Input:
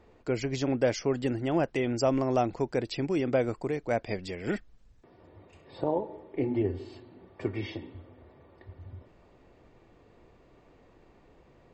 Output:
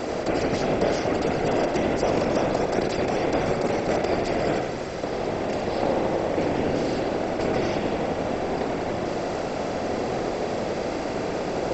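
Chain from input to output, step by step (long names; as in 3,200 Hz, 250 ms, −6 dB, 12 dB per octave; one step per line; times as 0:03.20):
compressor on every frequency bin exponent 0.2
random phases in short frames
bucket-brigade delay 87 ms, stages 2,048, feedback 58%, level −4.5 dB
level −5 dB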